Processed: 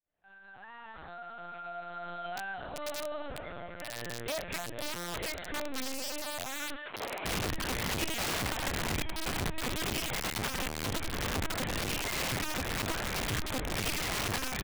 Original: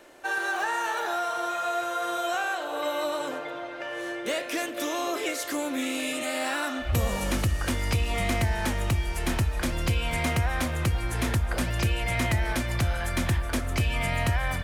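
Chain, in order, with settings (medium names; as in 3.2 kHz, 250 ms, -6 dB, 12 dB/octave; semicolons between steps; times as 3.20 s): fade-in on the opening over 4.05 s; LPC vocoder at 8 kHz pitch kept; 6.75–7.24 s: high-pass 870 Hz -> 410 Hz 12 dB/octave; feedback delay 608 ms, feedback 32%, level -23.5 dB; integer overflow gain 22 dB; trim -5.5 dB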